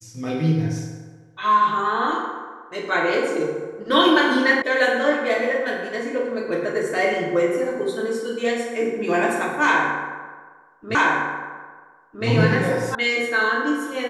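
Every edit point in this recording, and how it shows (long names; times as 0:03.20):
0:04.62: cut off before it has died away
0:10.95: the same again, the last 1.31 s
0:12.95: cut off before it has died away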